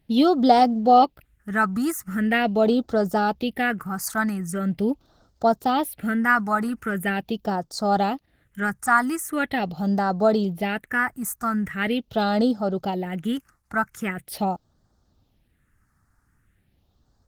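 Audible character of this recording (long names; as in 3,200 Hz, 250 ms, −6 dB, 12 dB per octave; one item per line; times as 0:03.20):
phaser sweep stages 4, 0.42 Hz, lowest notch 520–2,400 Hz
Opus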